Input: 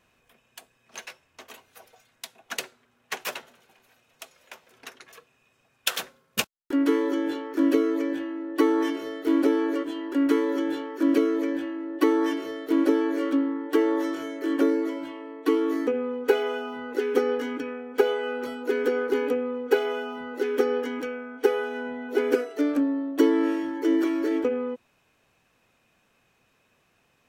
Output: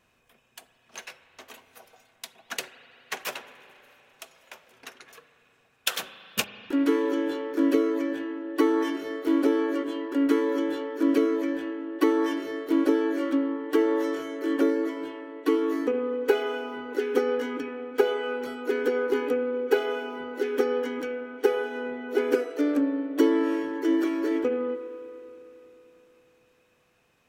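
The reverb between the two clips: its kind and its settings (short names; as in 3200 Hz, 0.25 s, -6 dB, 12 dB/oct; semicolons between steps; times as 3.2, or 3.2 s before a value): spring tank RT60 3.4 s, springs 34/39 ms, chirp 50 ms, DRR 11.5 dB; gain -1 dB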